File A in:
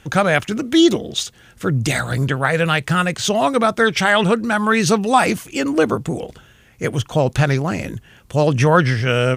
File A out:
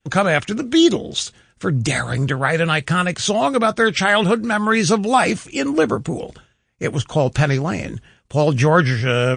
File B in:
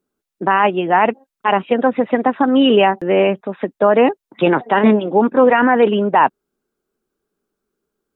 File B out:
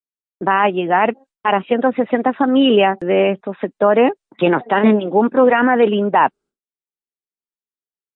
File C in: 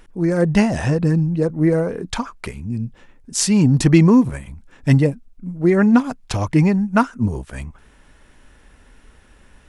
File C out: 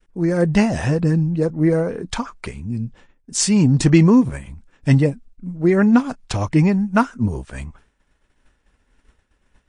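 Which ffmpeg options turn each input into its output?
-af "agate=range=-33dB:threshold=-38dB:ratio=3:detection=peak,adynamicequalizer=threshold=0.02:dfrequency=970:dqfactor=4.8:tfrequency=970:tqfactor=4.8:attack=5:release=100:ratio=0.375:range=2:mode=cutabove:tftype=bell" -ar 22050 -c:a libmp3lame -b:a 40k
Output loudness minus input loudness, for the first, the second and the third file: -0.5, -0.5, -0.5 LU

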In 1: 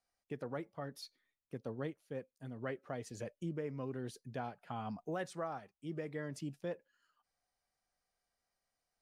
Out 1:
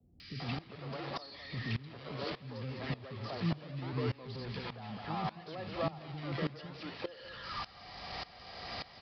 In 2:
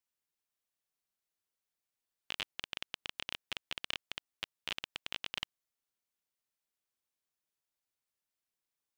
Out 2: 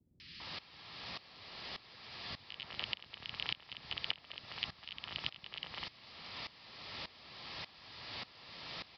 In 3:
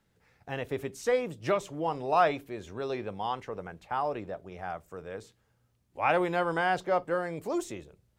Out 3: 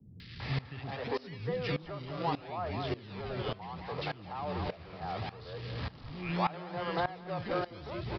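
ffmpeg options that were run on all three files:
-filter_complex "[0:a]aeval=exprs='val(0)+0.5*0.0141*sgn(val(0))':c=same,highpass=74,equalizer=f=1.6k:t=o:w=0.77:g=2.5,bandreject=f=1.5k:w=6,acrossover=split=490[a][b];[a]acrusher=samples=35:mix=1:aa=0.000001:lfo=1:lforange=35:lforate=0.71[c];[c][b]amix=inputs=2:normalize=0,acrossover=split=150[d][e];[e]acompressor=threshold=-47dB:ratio=2[f];[d][f]amix=inputs=2:normalize=0,asplit=2[g][h];[h]aecho=0:1:206:0.316[i];[g][i]amix=inputs=2:normalize=0,aresample=11025,aresample=44100,acrossover=split=320|1800[j][k][l];[l]adelay=200[m];[k]adelay=400[n];[j][n][m]amix=inputs=3:normalize=0,aeval=exprs='val(0)*pow(10,-19*if(lt(mod(-1.7*n/s,1),2*abs(-1.7)/1000),1-mod(-1.7*n/s,1)/(2*abs(-1.7)/1000),(mod(-1.7*n/s,1)-2*abs(-1.7)/1000)/(1-2*abs(-1.7)/1000))/20)':c=same,volume=12dB"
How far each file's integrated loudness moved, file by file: +3.5, -2.5, -6.0 LU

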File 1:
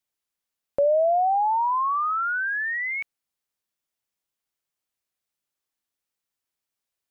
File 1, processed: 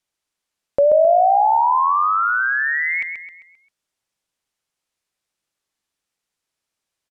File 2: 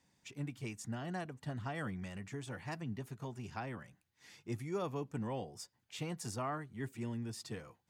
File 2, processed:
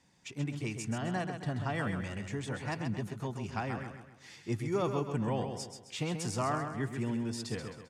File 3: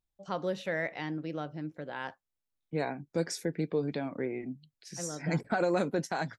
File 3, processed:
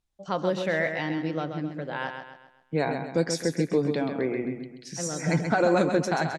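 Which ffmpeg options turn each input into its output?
-af "lowpass=9.8k,aecho=1:1:132|264|396|528|660:0.447|0.188|0.0788|0.0331|0.0139,volume=6dB"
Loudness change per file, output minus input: +7.0, +7.0, +7.0 LU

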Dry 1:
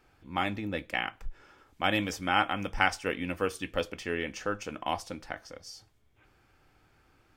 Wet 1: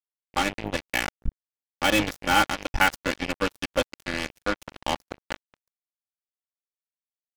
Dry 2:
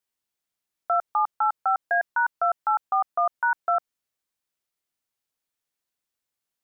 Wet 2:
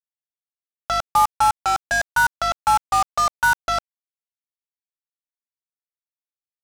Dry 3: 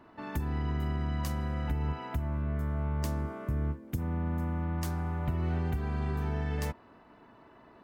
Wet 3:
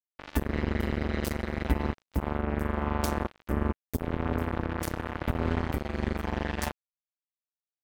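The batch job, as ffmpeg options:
-af "aecho=1:1:3.5:0.99,aeval=exprs='val(0)+0.0126*(sin(2*PI*50*n/s)+sin(2*PI*2*50*n/s)/2+sin(2*PI*3*50*n/s)/3+sin(2*PI*4*50*n/s)/4+sin(2*PI*5*50*n/s)/5)':c=same,acrusher=bits=3:mix=0:aa=0.5,volume=2dB"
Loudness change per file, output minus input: +5.5, +4.5, +2.0 LU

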